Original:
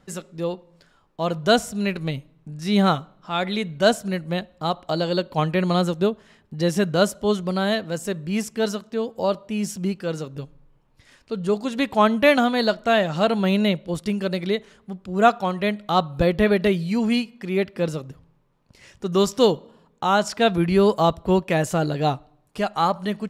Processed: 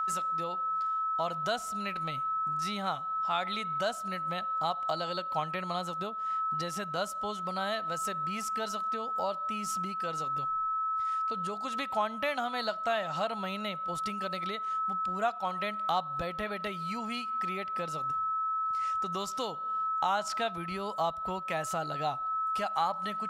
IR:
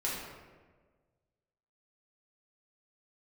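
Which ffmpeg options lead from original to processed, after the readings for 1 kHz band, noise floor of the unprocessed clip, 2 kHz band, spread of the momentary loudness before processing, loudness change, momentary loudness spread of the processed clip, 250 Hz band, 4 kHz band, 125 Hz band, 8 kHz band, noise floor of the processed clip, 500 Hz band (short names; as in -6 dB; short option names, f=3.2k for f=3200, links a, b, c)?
-4.0 dB, -61 dBFS, -10.5 dB, 11 LU, -10.0 dB, 4 LU, -19.0 dB, -10.5 dB, -17.5 dB, -8.0 dB, -39 dBFS, -15.0 dB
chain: -af "aeval=exprs='val(0)+0.0398*sin(2*PI*1300*n/s)':c=same,acompressor=threshold=-27dB:ratio=4,lowshelf=f=550:t=q:w=1.5:g=-8.5,volume=-1.5dB"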